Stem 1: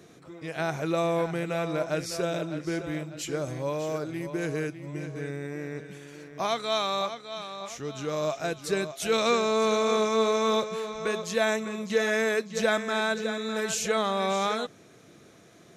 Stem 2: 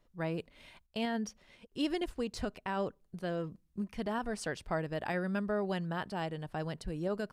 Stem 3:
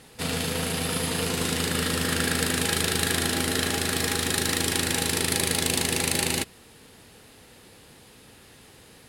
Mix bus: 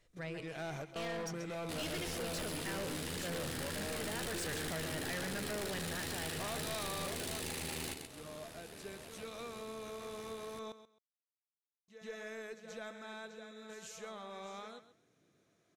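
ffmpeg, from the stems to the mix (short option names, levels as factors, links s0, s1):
-filter_complex "[0:a]volume=0.891,asplit=3[s0][s1][s2];[s0]atrim=end=10.59,asetpts=PTS-STARTPTS,afade=t=out:st=10.586:d=0.004:c=hsin[s3];[s1]atrim=start=10.59:end=11.88,asetpts=PTS-STARTPTS,volume=0[s4];[s2]atrim=start=11.88,asetpts=PTS-STARTPTS,afade=t=in:d=0.004:c=hsin[s5];[s3][s4][s5]concat=n=3:v=0:a=1,asplit=2[s6][s7];[s7]volume=0.112[s8];[1:a]equalizer=f=125:t=o:w=1:g=8,equalizer=f=250:t=o:w=1:g=-9,equalizer=f=500:t=o:w=1:g=5,equalizer=f=1000:t=o:w=1:g=-6,equalizer=f=2000:t=o:w=1:g=10,equalizer=f=4000:t=o:w=1:g=4,equalizer=f=8000:t=o:w=1:g=11,dynaudnorm=f=190:g=13:m=2.51,volume=0.75,asplit=3[s9][s10][s11];[s10]volume=0.282[s12];[2:a]tremolo=f=78:d=0.857,adelay=1500,volume=1.26,asplit=2[s13][s14];[s14]volume=0.2[s15];[s11]apad=whole_len=695139[s16];[s6][s16]sidechaingate=range=0.0316:threshold=0.00158:ratio=16:detection=peak[s17];[s8][s12][s15]amix=inputs=3:normalize=0,aecho=0:1:132|264|396:1|0.2|0.04[s18];[s17][s9][s13][s18]amix=inputs=4:normalize=0,aeval=exprs='(tanh(28.2*val(0)+0.2)-tanh(0.2))/28.2':c=same,alimiter=level_in=3.55:limit=0.0631:level=0:latency=1:release=167,volume=0.282"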